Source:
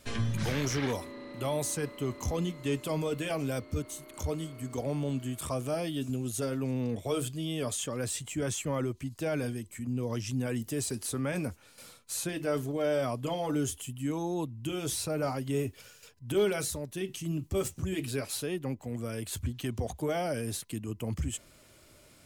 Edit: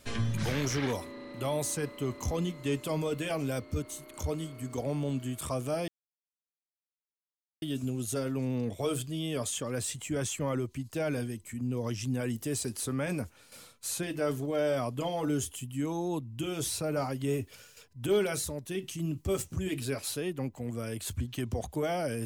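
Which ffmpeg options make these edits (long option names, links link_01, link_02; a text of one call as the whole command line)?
ffmpeg -i in.wav -filter_complex "[0:a]asplit=2[link_01][link_02];[link_01]atrim=end=5.88,asetpts=PTS-STARTPTS,afade=type=out:start_time=5.876:duration=0.004:curve=hsin,apad=pad_dur=1.74[link_03];[link_02]atrim=start=5.88,asetpts=PTS-STARTPTS,afade=type=in:duration=0.004:curve=hsin[link_04];[link_03][link_04]concat=n=2:v=0:a=1" out.wav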